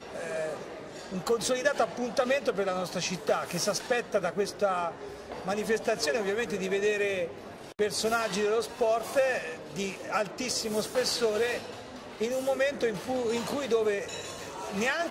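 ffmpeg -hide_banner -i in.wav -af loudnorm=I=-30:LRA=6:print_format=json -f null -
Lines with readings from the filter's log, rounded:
"input_i" : "-29.8",
"input_tp" : "-11.8",
"input_lra" : "1.2",
"input_thresh" : "-40.0",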